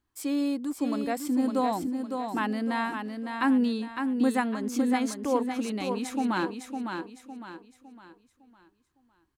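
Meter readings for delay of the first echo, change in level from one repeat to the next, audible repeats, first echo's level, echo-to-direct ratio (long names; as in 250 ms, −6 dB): 557 ms, −8.5 dB, 4, −6.0 dB, −5.5 dB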